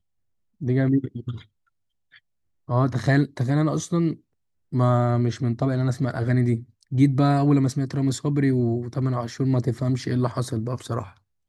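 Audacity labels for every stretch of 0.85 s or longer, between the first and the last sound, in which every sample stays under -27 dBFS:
1.340000	2.690000	silence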